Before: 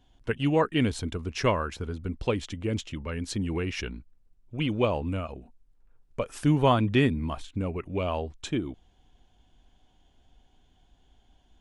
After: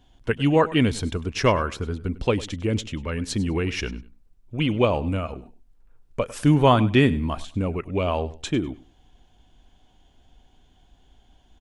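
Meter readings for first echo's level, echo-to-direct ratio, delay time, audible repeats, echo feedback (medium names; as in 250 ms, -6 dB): -18.0 dB, -18.0 dB, 100 ms, 2, 22%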